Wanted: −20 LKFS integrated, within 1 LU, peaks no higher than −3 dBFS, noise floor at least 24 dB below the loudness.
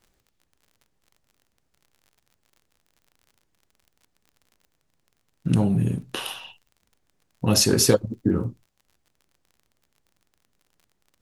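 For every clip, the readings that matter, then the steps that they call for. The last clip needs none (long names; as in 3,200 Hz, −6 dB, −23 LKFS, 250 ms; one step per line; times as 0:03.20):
crackle rate 41 per second; integrated loudness −22.5 LKFS; sample peak −4.0 dBFS; target loudness −20.0 LKFS
→ click removal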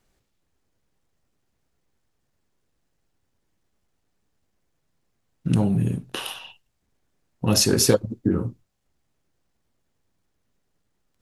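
crackle rate 0.089 per second; integrated loudness −22.5 LKFS; sample peak −4.0 dBFS; target loudness −20.0 LKFS
→ level +2.5 dB
brickwall limiter −3 dBFS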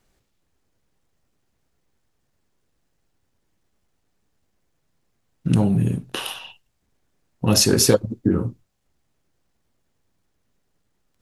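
integrated loudness −20.0 LKFS; sample peak −3.0 dBFS; background noise floor −71 dBFS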